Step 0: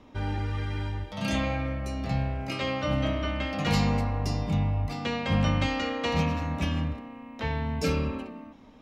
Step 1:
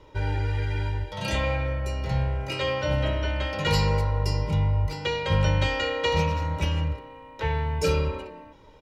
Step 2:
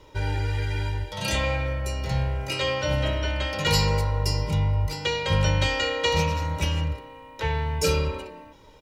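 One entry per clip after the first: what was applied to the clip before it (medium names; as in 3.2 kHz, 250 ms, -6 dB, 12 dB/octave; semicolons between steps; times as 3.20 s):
comb 2.1 ms, depth 99%
treble shelf 4.5 kHz +11 dB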